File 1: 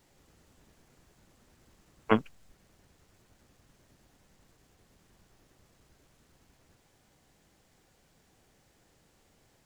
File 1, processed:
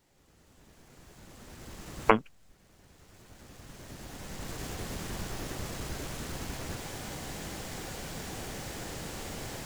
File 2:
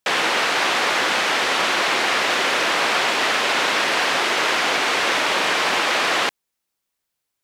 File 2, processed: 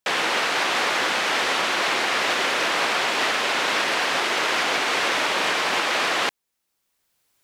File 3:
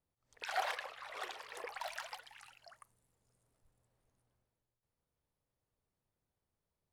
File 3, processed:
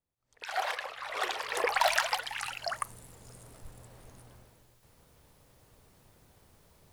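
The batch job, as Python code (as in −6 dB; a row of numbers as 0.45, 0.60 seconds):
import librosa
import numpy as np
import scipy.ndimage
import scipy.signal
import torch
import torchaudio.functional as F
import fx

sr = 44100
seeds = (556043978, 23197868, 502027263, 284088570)

y = fx.recorder_agc(x, sr, target_db=-9.0, rise_db_per_s=12.0, max_gain_db=30)
y = y * librosa.db_to_amplitude(-3.5)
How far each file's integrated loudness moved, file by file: −6.0, −3.0, +10.5 LU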